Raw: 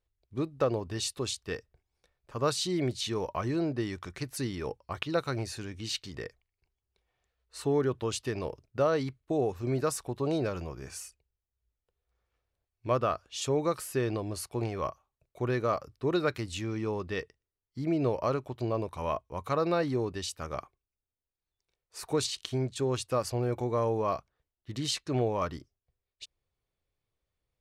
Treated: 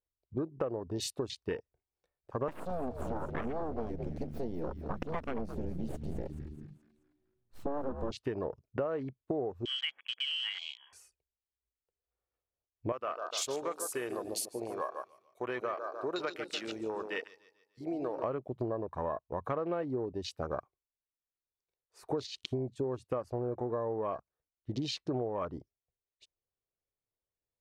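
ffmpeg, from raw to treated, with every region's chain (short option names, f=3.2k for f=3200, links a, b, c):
-filter_complex "[0:a]asettb=1/sr,asplit=3[a][b][c];[a]atrim=end=2.484[d];[b]atrim=start=2.48:end=8.11,asetpts=PTS-STARTPTS,afade=t=in:d=0.004:c=qsin,afade=t=out:st=5.626:d=0.004:c=qsin,asubboost=boost=10.5:cutoff=85,aeval=exprs='abs(val(0))':c=same,asplit=6[e][f][g][h][i][j];[f]adelay=214,afreqshift=-75,volume=-10dB[k];[g]adelay=428,afreqshift=-150,volume=-16.4dB[l];[h]adelay=642,afreqshift=-225,volume=-22.8dB[m];[i]adelay=856,afreqshift=-300,volume=-29.1dB[n];[j]adelay=1070,afreqshift=-375,volume=-35.5dB[o];[e][k][l][m][n][o]amix=inputs=6:normalize=0,atrim=end_sample=248283[p];[c]atrim=start=8.106[q];[d][p]acrossfade=d=0.004:c1=hsin:c2=qsin[r];[r][q]acrossfade=d=0.004:c1=qsin:c2=hsin,asettb=1/sr,asplit=3[s][t][u];[s]atrim=end=9.654[v];[t]atrim=start=9.65:end=10.93,asetpts=PTS-STARTPTS,afade=t=in:d=0.004:c=qsin,afade=t=out:st=1.276:d=0.004:c=qsin,lowshelf=f=230:g=-6.5,lowpass=f=2.9k:t=q:w=0.5098,lowpass=f=2.9k:t=q:w=0.6013,lowpass=f=2.9k:t=q:w=0.9,lowpass=f=2.9k:t=q:w=2.563,afreqshift=-3400[w];[u]atrim=start=10.926[x];[v][w]acrossfade=d=0.004:c1=hsin:c2=qsin[y];[y][x]acrossfade=d=0.004:c1=qsin:c2=hsin,asettb=1/sr,asplit=3[z][aa][ab];[z]atrim=end=12.924[ac];[aa]atrim=start=12.92:end=18.24,asetpts=PTS-STARTPTS,afade=t=in:d=0.004:c=qsin,afade=t=out:st=5.316:d=0.004:c=qsin,highpass=f=1.3k:p=1,highshelf=f=4k:g=10,aecho=1:1:146|292|438|584|730:0.398|0.187|0.0879|0.0413|0.0194,atrim=end_sample=234612[ad];[ab]atrim=start=18.236[ae];[ac][ad]acrossfade=d=0.004:c1=hsin:c2=qsin[af];[af][ae]acrossfade=d=0.004:c1=qsin:c2=hsin,afwtdn=0.01,equalizer=f=500:w=0.39:g=8.5,acompressor=threshold=-32dB:ratio=6"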